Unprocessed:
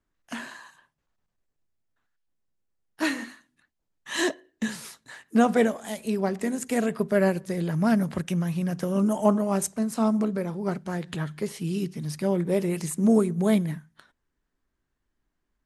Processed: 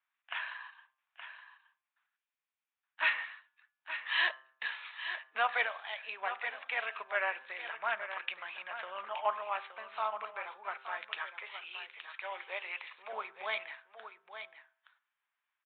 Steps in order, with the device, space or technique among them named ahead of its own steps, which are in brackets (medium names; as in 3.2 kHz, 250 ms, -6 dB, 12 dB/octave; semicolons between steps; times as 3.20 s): de-hum 131.7 Hz, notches 13; 11.19–13.13 s: high-pass 450 Hz 12 dB/octave; delay 871 ms -10 dB; musical greeting card (resampled via 8 kHz; high-pass 900 Hz 24 dB/octave; peaking EQ 2.4 kHz +6 dB 0.3 oct)